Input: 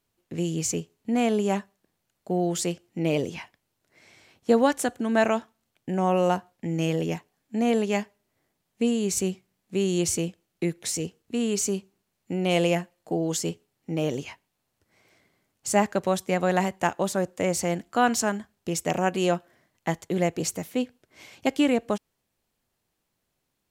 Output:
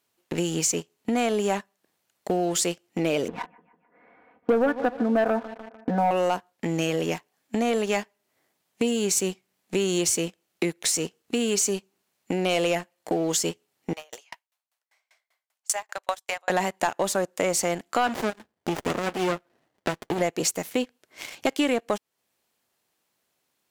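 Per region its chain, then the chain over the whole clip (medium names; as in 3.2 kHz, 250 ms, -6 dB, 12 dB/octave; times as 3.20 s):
3.28–6.11 s: low-pass 1.5 kHz 24 dB/octave + comb 4.1 ms, depth 99% + feedback delay 150 ms, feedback 51%, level -18 dB
13.93–16.50 s: high-pass 660 Hz 24 dB/octave + sawtooth tremolo in dB decaying 5.1 Hz, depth 33 dB
18.07–20.21 s: comb of notches 200 Hz + sliding maximum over 33 samples
whole clip: high-pass 460 Hz 6 dB/octave; waveshaping leveller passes 2; compression 2.5:1, threshold -36 dBFS; trim +8.5 dB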